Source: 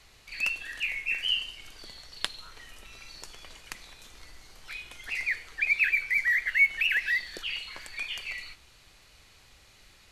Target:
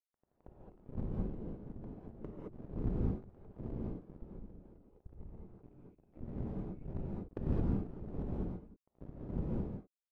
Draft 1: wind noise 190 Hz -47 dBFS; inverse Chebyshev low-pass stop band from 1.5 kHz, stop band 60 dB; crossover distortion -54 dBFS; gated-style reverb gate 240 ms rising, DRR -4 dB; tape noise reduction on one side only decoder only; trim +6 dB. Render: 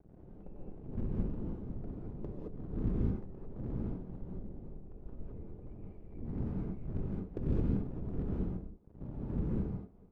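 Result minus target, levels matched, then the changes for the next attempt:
crossover distortion: distortion -8 dB
change: crossover distortion -45.5 dBFS

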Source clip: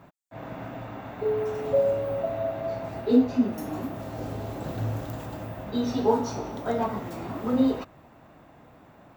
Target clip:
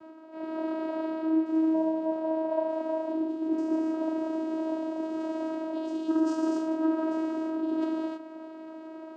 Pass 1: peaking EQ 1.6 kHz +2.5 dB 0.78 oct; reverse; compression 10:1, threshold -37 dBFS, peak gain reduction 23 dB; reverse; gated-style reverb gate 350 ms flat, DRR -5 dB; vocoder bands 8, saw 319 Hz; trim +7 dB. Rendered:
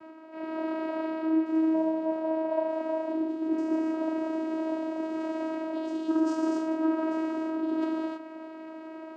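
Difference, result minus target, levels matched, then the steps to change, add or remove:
2 kHz band +3.5 dB
change: peaking EQ 1.6 kHz -6 dB 0.78 oct

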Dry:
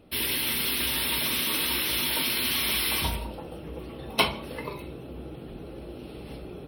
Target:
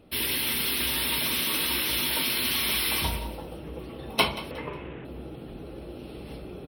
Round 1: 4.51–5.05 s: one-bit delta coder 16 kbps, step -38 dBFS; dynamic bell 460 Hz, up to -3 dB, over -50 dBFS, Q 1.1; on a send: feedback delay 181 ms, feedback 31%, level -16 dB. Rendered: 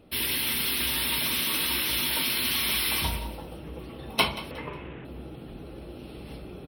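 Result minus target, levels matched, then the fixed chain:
500 Hz band -2.5 dB
4.51–5.05 s: one-bit delta coder 16 kbps, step -38 dBFS; on a send: feedback delay 181 ms, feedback 31%, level -16 dB

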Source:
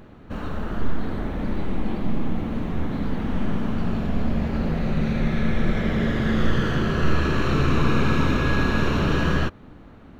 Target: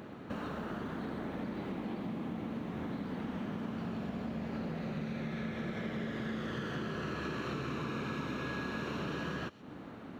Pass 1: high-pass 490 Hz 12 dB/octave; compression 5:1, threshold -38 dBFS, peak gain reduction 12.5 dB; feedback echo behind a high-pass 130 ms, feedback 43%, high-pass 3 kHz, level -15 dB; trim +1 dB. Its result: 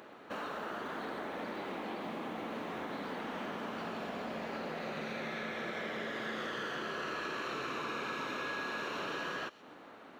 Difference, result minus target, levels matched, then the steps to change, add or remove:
125 Hz band -11.5 dB
change: high-pass 150 Hz 12 dB/octave

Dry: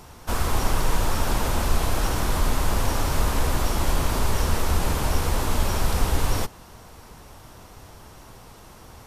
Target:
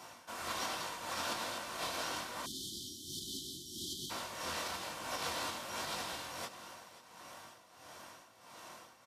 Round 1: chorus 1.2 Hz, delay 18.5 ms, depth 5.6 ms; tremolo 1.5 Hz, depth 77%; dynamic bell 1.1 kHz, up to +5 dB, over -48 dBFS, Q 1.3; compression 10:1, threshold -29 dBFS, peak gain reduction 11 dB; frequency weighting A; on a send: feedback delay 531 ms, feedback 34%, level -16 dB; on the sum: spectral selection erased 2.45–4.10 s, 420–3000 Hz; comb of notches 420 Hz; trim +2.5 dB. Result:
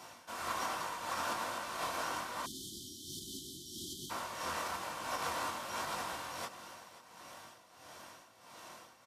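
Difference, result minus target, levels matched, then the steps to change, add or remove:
4 kHz band -3.5 dB
change: dynamic bell 4 kHz, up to +5 dB, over -48 dBFS, Q 1.3

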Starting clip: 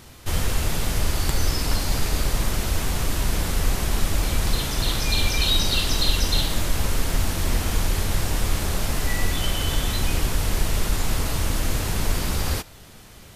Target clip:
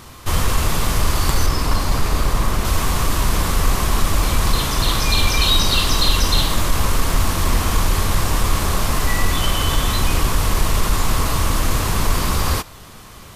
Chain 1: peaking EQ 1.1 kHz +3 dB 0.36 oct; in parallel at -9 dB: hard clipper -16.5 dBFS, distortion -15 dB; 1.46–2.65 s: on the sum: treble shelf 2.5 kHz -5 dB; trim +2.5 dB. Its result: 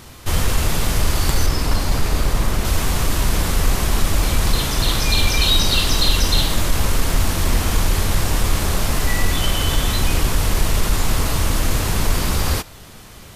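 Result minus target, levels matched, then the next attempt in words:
1 kHz band -3.5 dB
peaking EQ 1.1 kHz +10 dB 0.36 oct; in parallel at -9 dB: hard clipper -16.5 dBFS, distortion -15 dB; 1.46–2.65 s: on the sum: treble shelf 2.5 kHz -5 dB; trim +2.5 dB

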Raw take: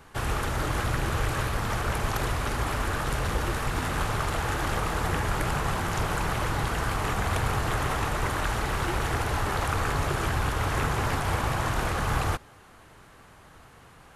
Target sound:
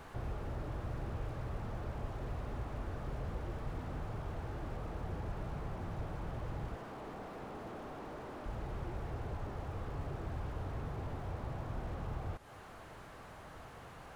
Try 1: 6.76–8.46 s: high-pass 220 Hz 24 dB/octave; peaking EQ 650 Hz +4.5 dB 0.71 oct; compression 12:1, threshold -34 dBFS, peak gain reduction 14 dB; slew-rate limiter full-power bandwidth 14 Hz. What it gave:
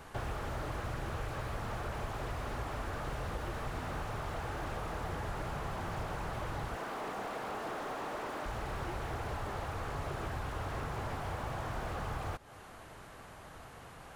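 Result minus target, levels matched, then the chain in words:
slew-rate limiter: distortion -9 dB
6.76–8.46 s: high-pass 220 Hz 24 dB/octave; peaking EQ 650 Hz +4.5 dB 0.71 oct; compression 12:1, threshold -34 dBFS, peak gain reduction 14 dB; slew-rate limiter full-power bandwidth 4 Hz

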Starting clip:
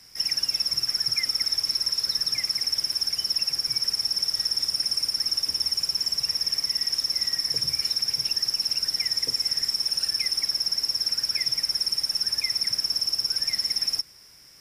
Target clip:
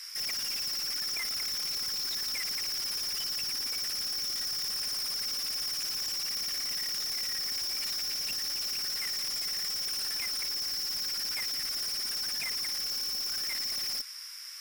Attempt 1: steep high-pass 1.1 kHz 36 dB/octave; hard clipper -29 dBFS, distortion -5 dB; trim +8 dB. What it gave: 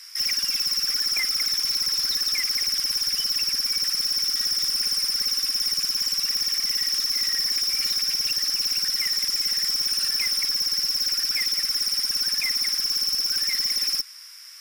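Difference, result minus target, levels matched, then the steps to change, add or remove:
hard clipper: distortion -4 dB
change: hard clipper -40.5 dBFS, distortion -1 dB

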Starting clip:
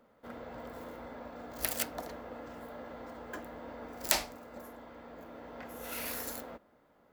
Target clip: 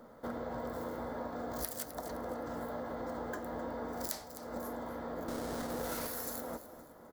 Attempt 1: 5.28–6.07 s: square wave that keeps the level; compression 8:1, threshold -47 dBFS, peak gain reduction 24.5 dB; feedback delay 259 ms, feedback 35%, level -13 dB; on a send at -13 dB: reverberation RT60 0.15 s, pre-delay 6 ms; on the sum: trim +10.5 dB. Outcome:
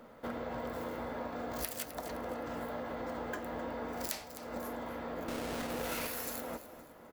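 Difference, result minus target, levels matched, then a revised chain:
2 kHz band +3.5 dB
5.28–6.07 s: square wave that keeps the level; compression 8:1, threshold -47 dBFS, peak gain reduction 24.5 dB; peaking EQ 2.6 kHz -14 dB 0.61 oct; feedback delay 259 ms, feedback 35%, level -13 dB; on a send at -13 dB: reverberation RT60 0.15 s, pre-delay 6 ms; on the sum: trim +10.5 dB

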